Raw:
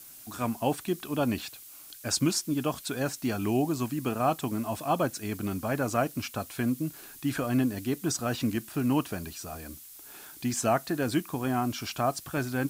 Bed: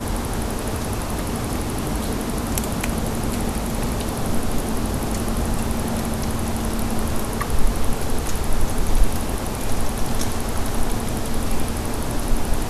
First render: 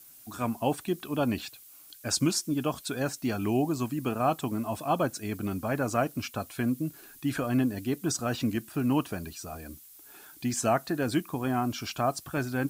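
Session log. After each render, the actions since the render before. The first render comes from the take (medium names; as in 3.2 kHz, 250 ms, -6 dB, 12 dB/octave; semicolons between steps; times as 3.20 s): noise reduction 6 dB, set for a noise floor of -49 dBFS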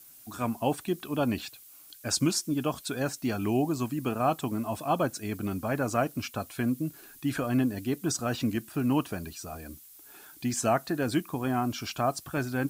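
no audible change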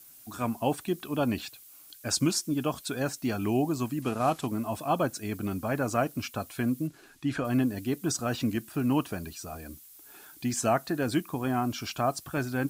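4.02–4.47 s: CVSD coder 64 kbps; 6.87–7.45 s: distance through air 59 m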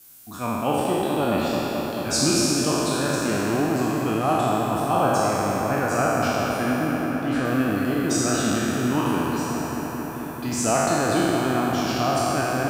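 spectral sustain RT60 2.79 s; bucket-brigade echo 219 ms, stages 4096, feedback 84%, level -7.5 dB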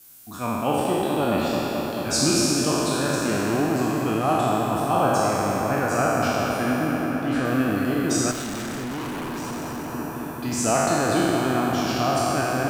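8.31–9.94 s: overload inside the chain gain 28.5 dB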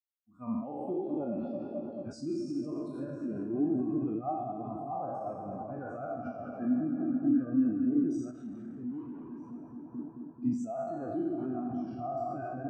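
peak limiter -18 dBFS, peak gain reduction 11 dB; spectral contrast expander 2.5:1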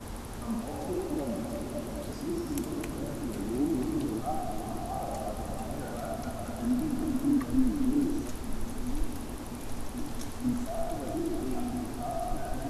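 add bed -15.5 dB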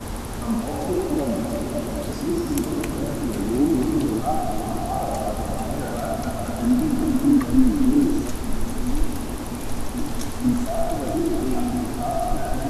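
trim +9.5 dB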